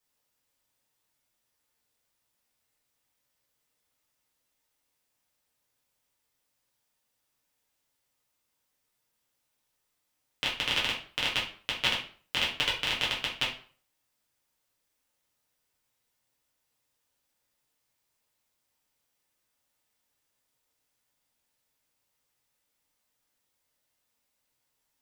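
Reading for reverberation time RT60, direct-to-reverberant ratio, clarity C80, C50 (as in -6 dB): 0.45 s, -6.0 dB, 12.0 dB, 6.5 dB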